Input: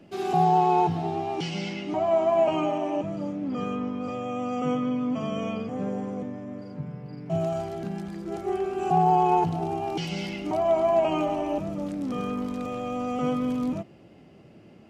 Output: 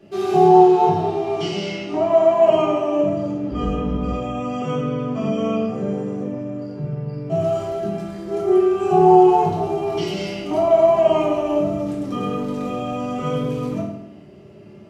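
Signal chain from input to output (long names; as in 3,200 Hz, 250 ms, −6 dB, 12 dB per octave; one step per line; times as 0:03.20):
0:03.51–0:04.08: sub-octave generator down 2 octaves, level +2 dB
convolution reverb RT60 0.80 s, pre-delay 3 ms, DRR −6.5 dB
level −2 dB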